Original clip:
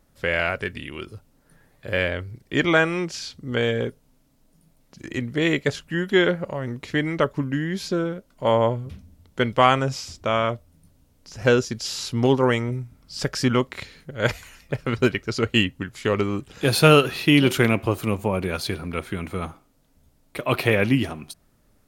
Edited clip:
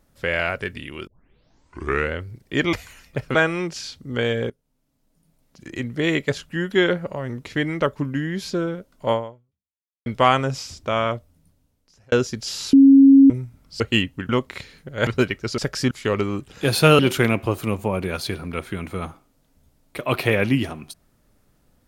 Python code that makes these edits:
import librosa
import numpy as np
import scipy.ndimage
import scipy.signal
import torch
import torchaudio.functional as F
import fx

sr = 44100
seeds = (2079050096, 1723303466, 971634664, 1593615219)

y = fx.edit(x, sr, fx.tape_start(start_s=1.07, length_s=1.14),
    fx.fade_in_from(start_s=3.88, length_s=1.44, floor_db=-17.5),
    fx.fade_out_span(start_s=8.5, length_s=0.94, curve='exp'),
    fx.fade_out_span(start_s=10.47, length_s=1.03),
    fx.bleep(start_s=12.11, length_s=0.57, hz=273.0, db=-6.5),
    fx.swap(start_s=13.18, length_s=0.33, other_s=15.42, other_length_s=0.49),
    fx.move(start_s=14.29, length_s=0.62, to_s=2.73),
    fx.cut(start_s=16.99, length_s=0.4), tone=tone)